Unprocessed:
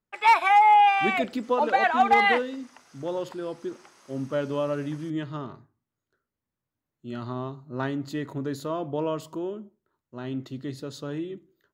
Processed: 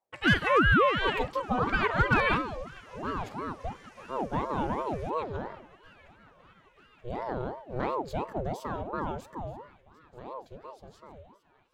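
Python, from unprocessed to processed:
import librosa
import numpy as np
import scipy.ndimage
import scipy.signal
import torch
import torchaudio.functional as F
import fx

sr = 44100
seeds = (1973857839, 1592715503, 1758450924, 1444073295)

p1 = fx.fade_out_tail(x, sr, length_s=3.52)
p2 = fx.low_shelf(p1, sr, hz=260.0, db=9.5)
p3 = p2 + fx.echo_thinned(p2, sr, ms=932, feedback_pct=73, hz=440.0, wet_db=-21.5, dry=0)
p4 = fx.ring_lfo(p3, sr, carrier_hz=520.0, swing_pct=55, hz=2.9)
y = F.gain(torch.from_numpy(p4), -3.0).numpy()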